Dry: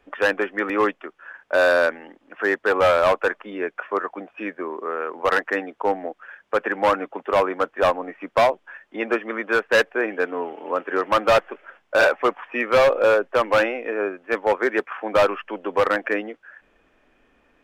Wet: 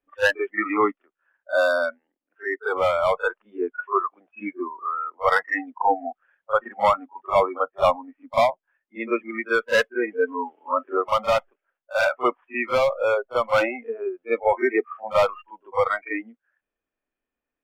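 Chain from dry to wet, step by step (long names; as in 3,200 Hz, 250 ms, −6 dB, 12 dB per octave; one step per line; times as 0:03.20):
noise reduction from a noise print of the clip's start 28 dB
echo ahead of the sound 39 ms −14.5 dB
speech leveller within 5 dB 0.5 s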